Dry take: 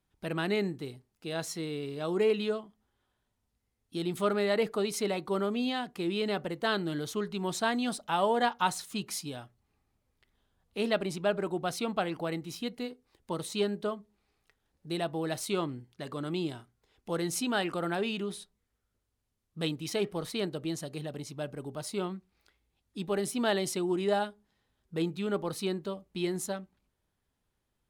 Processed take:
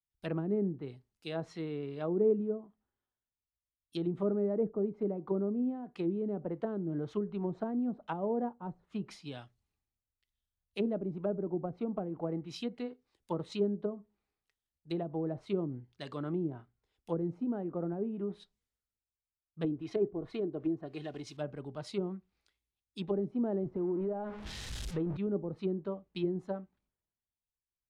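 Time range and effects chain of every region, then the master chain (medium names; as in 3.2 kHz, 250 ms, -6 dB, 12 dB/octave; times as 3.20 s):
19.64–21.37 s: comb 2.8 ms, depth 50% + companded quantiser 6-bit
23.63–25.17 s: jump at every zero crossing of -35.5 dBFS + compression 10:1, threshold -29 dBFS
whole clip: low-pass that closes with the level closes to 390 Hz, closed at -28 dBFS; dynamic bell 3.3 kHz, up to -3 dB, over -47 dBFS, Q 0.79; three bands expanded up and down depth 70%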